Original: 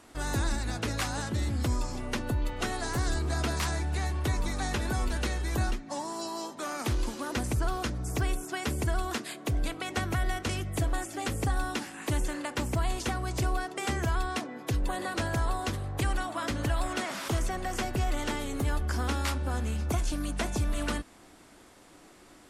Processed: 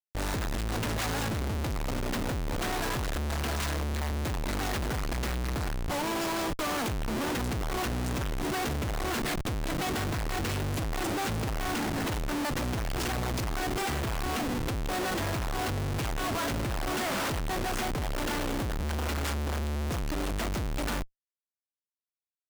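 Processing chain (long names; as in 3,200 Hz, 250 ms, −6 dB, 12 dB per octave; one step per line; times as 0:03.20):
0:15.81–0:16.53: comb filter 7.3 ms, depth 40%
comparator with hysteresis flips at −39 dBFS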